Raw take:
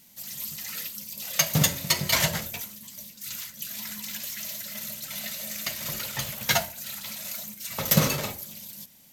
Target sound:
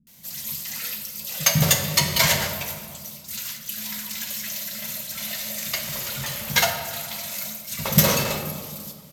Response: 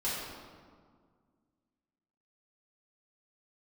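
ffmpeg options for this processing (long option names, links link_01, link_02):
-filter_complex "[0:a]acrossover=split=270[link_01][link_02];[link_02]adelay=70[link_03];[link_01][link_03]amix=inputs=2:normalize=0,asplit=2[link_04][link_05];[1:a]atrim=start_sample=2205[link_06];[link_05][link_06]afir=irnorm=-1:irlink=0,volume=-9dB[link_07];[link_04][link_07]amix=inputs=2:normalize=0,asettb=1/sr,asplit=3[link_08][link_09][link_10];[link_08]atrim=end=5.844[link_11];[link_09]atrim=start=5.84:end=6.5,asetpts=PTS-STARTPTS,afade=type=in:duration=0.004:curve=qsin,afade=type=out:start_time=0.656:duration=0.004:curve=qsin,volume=28dB,asoftclip=hard,volume=-28dB[link_12];[link_10]atrim=start=6.496[link_13];[link_11][link_12]acrossfade=duration=0.004:curve1=hsin:curve2=qsin[link_14];[link_14][link_13]acrossfade=duration=0.004:curve1=qsin:curve2=hsin,volume=2dB"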